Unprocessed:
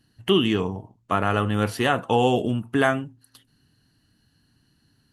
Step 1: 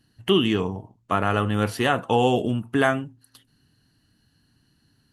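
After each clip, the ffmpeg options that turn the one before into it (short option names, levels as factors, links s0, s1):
-af anull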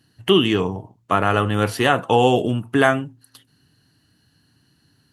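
-af "highpass=83,equalizer=f=220:w=5.1:g=-5,volume=1.68"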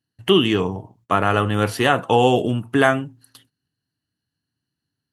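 -af "agate=range=0.0891:threshold=0.00178:ratio=16:detection=peak"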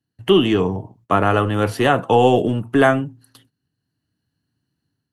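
-filter_complex "[0:a]tiltshelf=f=1100:g=3.5,acrossover=split=240[s0][s1];[s0]asoftclip=type=hard:threshold=0.075[s2];[s2][s1]amix=inputs=2:normalize=0,dynaudnorm=f=410:g=3:m=1.78"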